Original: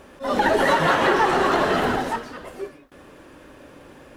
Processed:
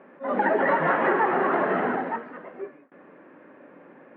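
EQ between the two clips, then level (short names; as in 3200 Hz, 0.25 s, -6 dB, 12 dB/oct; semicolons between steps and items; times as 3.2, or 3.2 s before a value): Chebyshev band-pass 180–2100 Hz, order 3; air absorption 89 m; -2.5 dB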